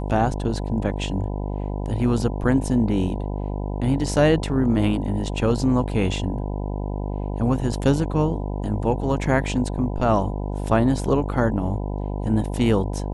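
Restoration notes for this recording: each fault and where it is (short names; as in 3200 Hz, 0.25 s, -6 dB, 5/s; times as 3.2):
buzz 50 Hz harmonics 20 -27 dBFS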